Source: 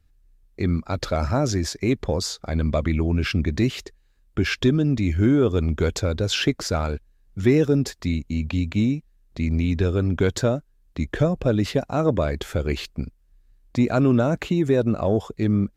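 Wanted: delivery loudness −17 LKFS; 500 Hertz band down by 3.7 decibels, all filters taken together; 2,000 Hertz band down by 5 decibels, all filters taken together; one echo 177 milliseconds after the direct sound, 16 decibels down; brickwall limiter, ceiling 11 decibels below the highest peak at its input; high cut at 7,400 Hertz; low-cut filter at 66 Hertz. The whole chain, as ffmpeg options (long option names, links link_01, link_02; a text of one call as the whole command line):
ffmpeg -i in.wav -af "highpass=66,lowpass=7400,equalizer=frequency=500:width_type=o:gain=-4.5,equalizer=frequency=2000:width_type=o:gain=-6.5,alimiter=limit=-19.5dB:level=0:latency=1,aecho=1:1:177:0.158,volume=13dB" out.wav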